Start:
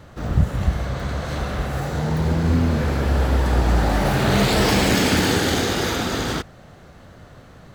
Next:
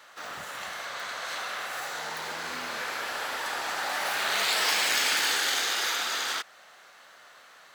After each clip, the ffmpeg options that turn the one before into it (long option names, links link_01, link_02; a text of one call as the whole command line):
ffmpeg -i in.wav -filter_complex "[0:a]highpass=1200,asplit=2[link_01][link_02];[link_02]acompressor=threshold=-33dB:ratio=6,volume=-1.5dB[link_03];[link_01][link_03]amix=inputs=2:normalize=0,volume=-3.5dB" out.wav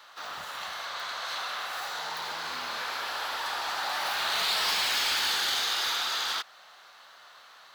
ffmpeg -i in.wav -filter_complex "[0:a]equalizer=frequency=125:width_type=o:width=1:gain=-4,equalizer=frequency=250:width_type=o:width=1:gain=-5,equalizer=frequency=500:width_type=o:width=1:gain=-4,equalizer=frequency=1000:width_type=o:width=1:gain=4,equalizer=frequency=2000:width_type=o:width=1:gain=-4,equalizer=frequency=4000:width_type=o:width=1:gain=6,equalizer=frequency=8000:width_type=o:width=1:gain=-6,acrossover=split=120[link_01][link_02];[link_02]asoftclip=type=tanh:threshold=-21.5dB[link_03];[link_01][link_03]amix=inputs=2:normalize=0" out.wav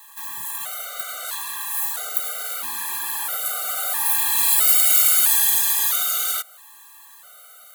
ffmpeg -i in.wav -af "aexciter=amount=14.2:drive=6.4:freq=7600,afftfilt=real='re*gt(sin(2*PI*0.76*pts/sr)*(1-2*mod(floor(b*sr/1024/390),2)),0)':imag='im*gt(sin(2*PI*0.76*pts/sr)*(1-2*mod(floor(b*sr/1024/390),2)),0)':win_size=1024:overlap=0.75,volume=3dB" out.wav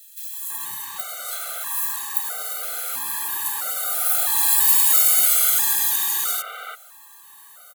ffmpeg -i in.wav -filter_complex "[0:a]acrossover=split=2700[link_01][link_02];[link_01]adelay=330[link_03];[link_03][link_02]amix=inputs=2:normalize=0" out.wav